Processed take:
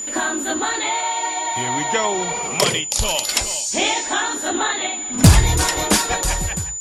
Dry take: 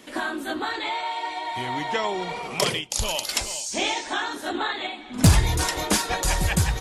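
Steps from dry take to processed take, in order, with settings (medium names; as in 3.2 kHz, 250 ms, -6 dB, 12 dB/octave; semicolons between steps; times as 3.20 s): fade out at the end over 0.78 s; whistle 7 kHz -31 dBFS; trim +5.5 dB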